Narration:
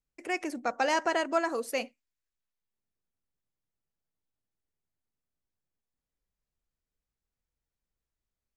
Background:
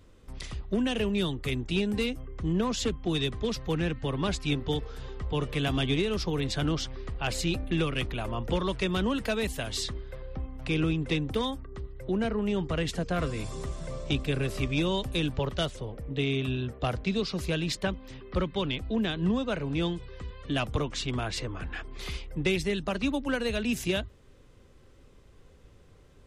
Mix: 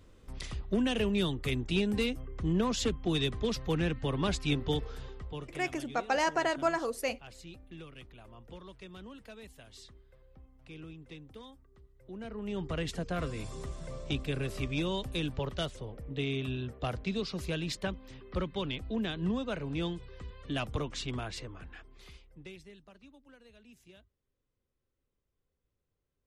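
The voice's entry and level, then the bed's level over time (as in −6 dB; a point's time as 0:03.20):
5.30 s, −1.5 dB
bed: 0:04.94 −1.5 dB
0:05.74 −20 dB
0:11.94 −20 dB
0:12.66 −5 dB
0:21.12 −5 dB
0:23.12 −28.5 dB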